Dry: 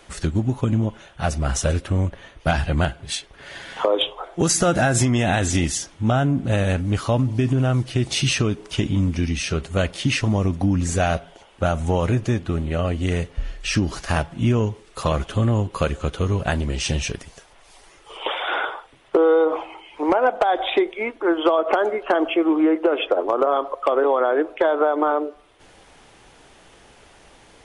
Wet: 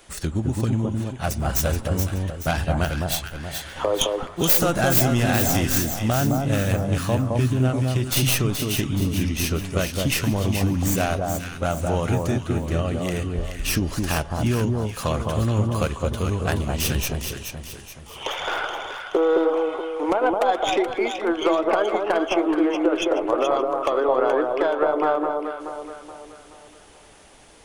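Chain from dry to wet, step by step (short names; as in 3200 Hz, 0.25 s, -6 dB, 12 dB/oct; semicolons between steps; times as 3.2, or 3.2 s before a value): tracing distortion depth 0.17 ms; high shelf 7000 Hz +11.5 dB; on a send: echo with dull and thin repeats by turns 0.213 s, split 1200 Hz, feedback 64%, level -2.5 dB; on the sum: gain -3.5 dB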